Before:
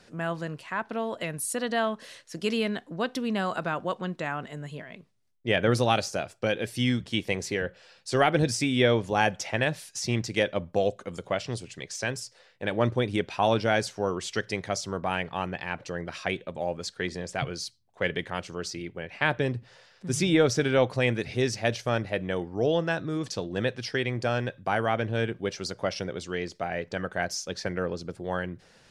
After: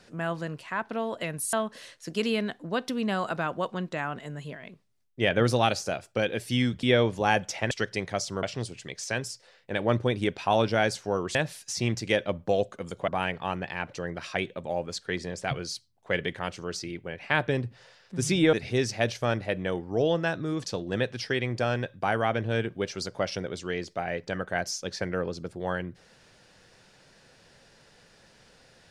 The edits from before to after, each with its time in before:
1.53–1.8 cut
7.1–8.74 cut
9.62–11.35 swap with 14.27–14.99
20.44–21.17 cut

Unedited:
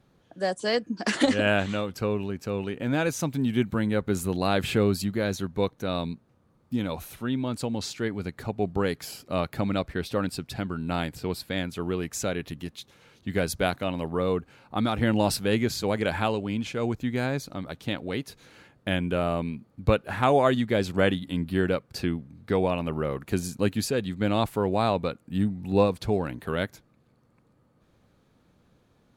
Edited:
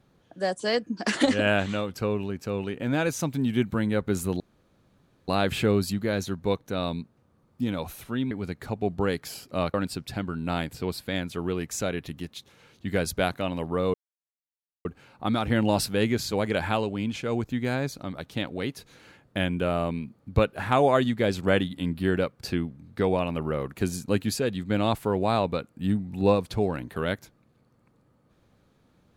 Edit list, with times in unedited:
4.4 insert room tone 0.88 s
7.43–8.08 cut
9.51–10.16 cut
14.36 insert silence 0.91 s

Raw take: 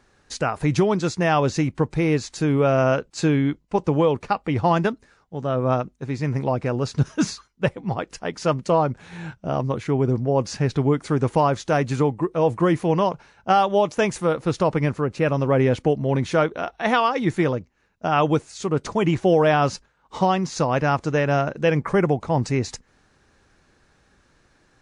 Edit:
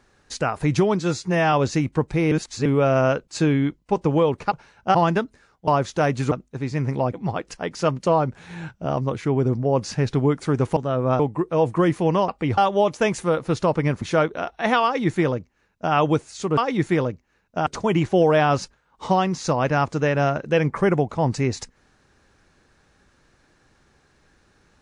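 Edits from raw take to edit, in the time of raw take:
1–1.35 stretch 1.5×
2.14–2.48 reverse
4.34–4.63 swap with 13.12–13.55
5.36–5.79 swap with 11.39–12.03
6.6–7.75 cut
14.99–16.22 cut
17.05–18.14 copy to 18.78

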